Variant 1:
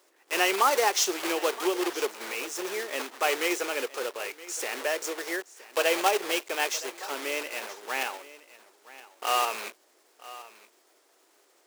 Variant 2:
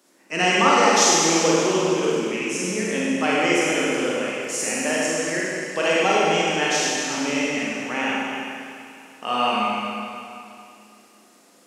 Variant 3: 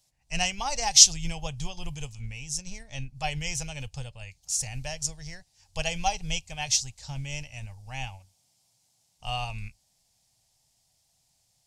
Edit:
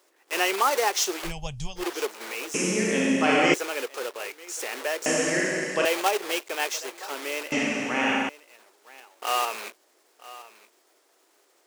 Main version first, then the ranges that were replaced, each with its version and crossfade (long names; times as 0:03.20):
1
0:01.28–0:01.80: punch in from 3, crossfade 0.10 s
0:02.54–0:03.54: punch in from 2
0:05.06–0:05.85: punch in from 2
0:07.52–0:08.29: punch in from 2